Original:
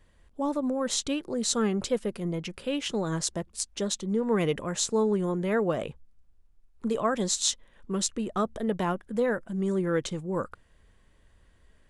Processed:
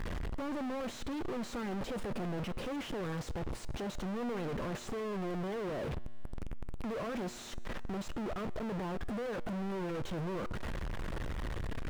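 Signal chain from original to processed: infinite clipping; LPF 1200 Hz 6 dB/oct; resonator 120 Hz, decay 1.8 s, mix 50%; mismatched tape noise reduction encoder only

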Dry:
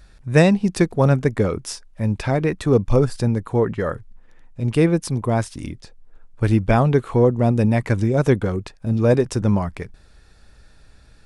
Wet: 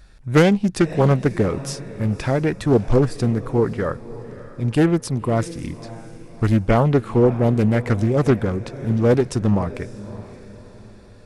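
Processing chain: diffused feedback echo 0.587 s, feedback 42%, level -16 dB; Doppler distortion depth 0.44 ms

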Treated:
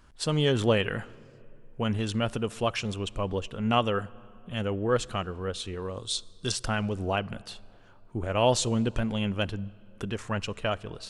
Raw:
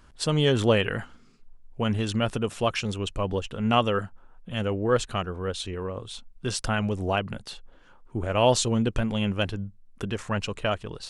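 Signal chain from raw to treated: 5.82–6.52 band shelf 5800 Hz +13.5 dB; on a send: reverb RT60 2.9 s, pre-delay 8 ms, DRR 22 dB; on the sum: gain -2.5 dB

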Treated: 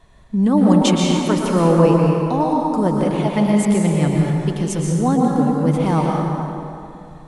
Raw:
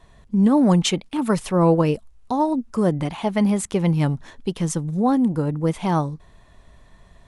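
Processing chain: 4.9–5.8 short-mantissa float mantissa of 8-bit; plate-style reverb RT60 2.7 s, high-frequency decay 0.6×, pre-delay 0.105 s, DRR -2 dB

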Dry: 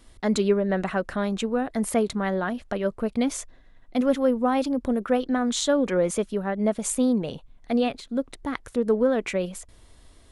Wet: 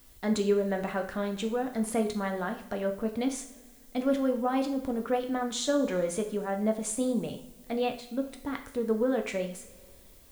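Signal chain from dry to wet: added noise blue -54 dBFS; two-slope reverb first 0.47 s, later 2.1 s, from -18 dB, DRR 4 dB; gain -6.5 dB

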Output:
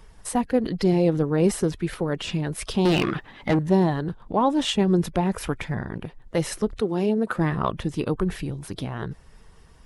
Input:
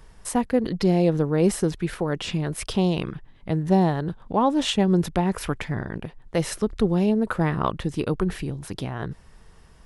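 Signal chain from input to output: bin magnitudes rounded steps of 15 dB; 2.85–3.59 overdrive pedal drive 25 dB, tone 3500 Hz, clips at -11.5 dBFS; 6.79–7.36 HPF 320 Hz -> 110 Hz

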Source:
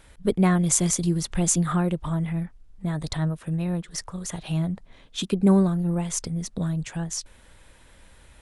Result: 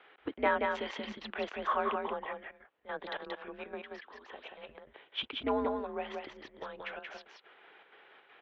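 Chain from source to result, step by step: 3.81–4.69 compressor 2:1, threshold -39 dBFS, peak gain reduction 9.5 dB; step gate "xxx.xxx.x" 161 bpm -12 dB; echo 0.18 s -4 dB; mistuned SSB -130 Hz 530–3300 Hz

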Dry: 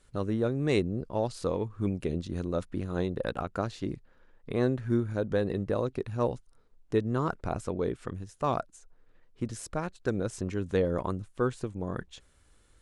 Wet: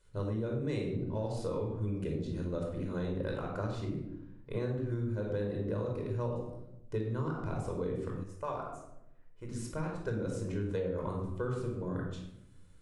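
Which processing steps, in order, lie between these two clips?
reverb RT60 0.80 s, pre-delay 19 ms, DRR -0.5 dB; compressor, threshold -22 dBFS, peak gain reduction 7.5 dB; 8.23–9.52 graphic EQ 125/250/4000 Hz -9/-7/-7 dB; gain -8.5 dB

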